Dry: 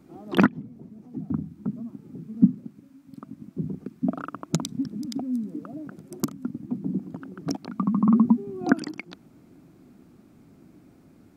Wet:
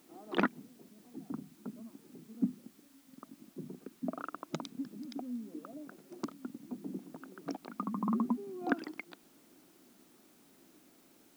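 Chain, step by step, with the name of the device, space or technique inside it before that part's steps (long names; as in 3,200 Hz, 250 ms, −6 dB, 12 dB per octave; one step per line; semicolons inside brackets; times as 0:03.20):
tape answering machine (band-pass filter 340–3,300 Hz; soft clipping −9 dBFS, distortion −21 dB; tape wow and flutter; white noise bed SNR 26 dB)
level −5.5 dB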